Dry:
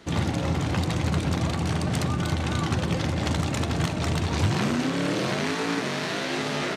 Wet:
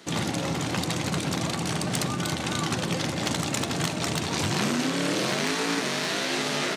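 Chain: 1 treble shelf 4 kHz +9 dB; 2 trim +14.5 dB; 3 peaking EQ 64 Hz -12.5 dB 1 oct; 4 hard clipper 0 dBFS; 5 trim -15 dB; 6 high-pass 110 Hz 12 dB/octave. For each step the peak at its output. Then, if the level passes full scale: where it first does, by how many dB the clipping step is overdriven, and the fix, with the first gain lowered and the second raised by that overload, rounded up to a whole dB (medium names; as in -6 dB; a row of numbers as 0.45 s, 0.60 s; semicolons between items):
-9.5 dBFS, +5.0 dBFS, +4.5 dBFS, 0.0 dBFS, -15.0 dBFS, -12.0 dBFS; step 2, 4.5 dB; step 2 +9.5 dB, step 5 -10 dB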